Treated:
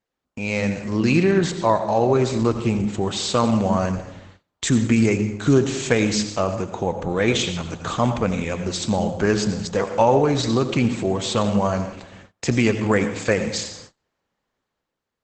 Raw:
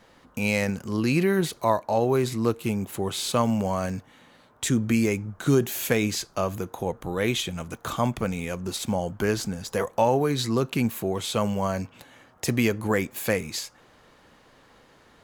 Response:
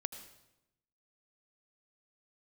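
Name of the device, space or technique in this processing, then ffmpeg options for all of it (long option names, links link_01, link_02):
speakerphone in a meeting room: -filter_complex "[1:a]atrim=start_sample=2205[link_01];[0:a][link_01]afir=irnorm=-1:irlink=0,dynaudnorm=framelen=110:gausssize=13:maxgain=7dB,agate=range=-27dB:threshold=-42dB:ratio=16:detection=peak" -ar 48000 -c:a libopus -b:a 12k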